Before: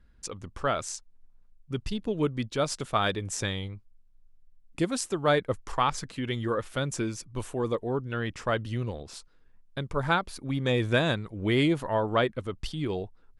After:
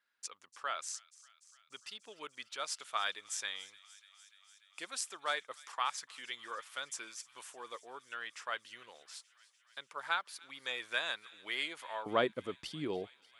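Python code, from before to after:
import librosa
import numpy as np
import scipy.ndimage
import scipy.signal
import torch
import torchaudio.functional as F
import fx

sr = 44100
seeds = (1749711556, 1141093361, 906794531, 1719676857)

y = fx.highpass(x, sr, hz=fx.steps((0.0, 1200.0), (12.06, 230.0)), slope=12)
y = fx.echo_wet_highpass(y, sr, ms=294, feedback_pct=77, hz=2100.0, wet_db=-19.0)
y = y * 10.0 ** (-5.0 / 20.0)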